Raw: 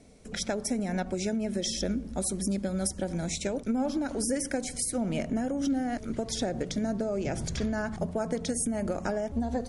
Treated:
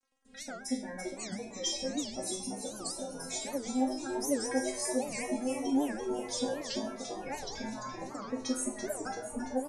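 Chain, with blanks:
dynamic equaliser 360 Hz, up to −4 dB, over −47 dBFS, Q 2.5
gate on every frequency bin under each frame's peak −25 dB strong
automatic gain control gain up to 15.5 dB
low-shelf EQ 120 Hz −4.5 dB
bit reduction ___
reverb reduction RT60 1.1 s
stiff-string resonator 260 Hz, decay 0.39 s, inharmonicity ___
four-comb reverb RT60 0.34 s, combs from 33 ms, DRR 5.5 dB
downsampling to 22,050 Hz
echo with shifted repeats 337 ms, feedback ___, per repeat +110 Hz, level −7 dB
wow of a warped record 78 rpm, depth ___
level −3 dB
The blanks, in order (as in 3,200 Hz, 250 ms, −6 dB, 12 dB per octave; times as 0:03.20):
8 bits, 0.002, 61%, 250 cents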